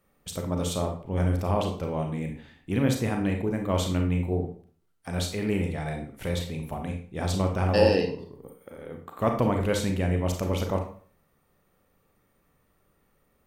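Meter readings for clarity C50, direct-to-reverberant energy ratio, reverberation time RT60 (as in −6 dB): 7.0 dB, 3.0 dB, 0.45 s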